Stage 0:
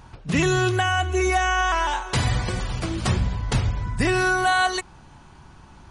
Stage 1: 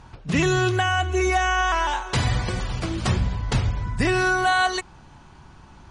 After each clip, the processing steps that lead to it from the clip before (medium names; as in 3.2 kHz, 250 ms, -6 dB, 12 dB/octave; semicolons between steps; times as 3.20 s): low-pass 8.5 kHz 12 dB/octave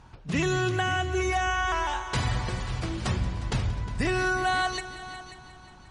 multi-head delay 179 ms, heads all three, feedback 41%, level -16.5 dB; trim -5.5 dB